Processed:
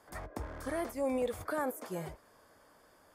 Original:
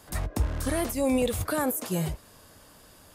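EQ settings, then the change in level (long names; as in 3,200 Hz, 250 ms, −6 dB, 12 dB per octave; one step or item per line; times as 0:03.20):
bass and treble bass −12 dB, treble −11 dB
parametric band 2,800 Hz −9.5 dB 0.38 octaves
notch filter 3,900 Hz, Q 8.8
−5.0 dB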